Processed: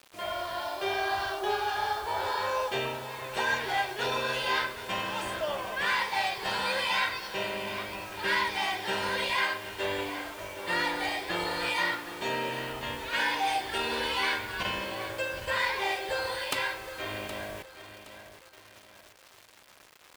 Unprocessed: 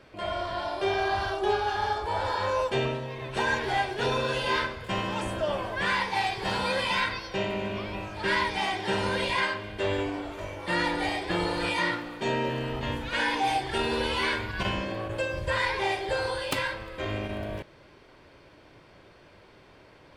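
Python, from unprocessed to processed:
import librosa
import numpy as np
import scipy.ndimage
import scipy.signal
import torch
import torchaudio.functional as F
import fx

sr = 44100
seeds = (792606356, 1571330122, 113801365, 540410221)

y = fx.quant_dither(x, sr, seeds[0], bits=8, dither='none')
y = fx.low_shelf(y, sr, hz=390.0, db=-12.0)
y = fx.echo_feedback(y, sr, ms=769, feedback_pct=37, wet_db=-12.5)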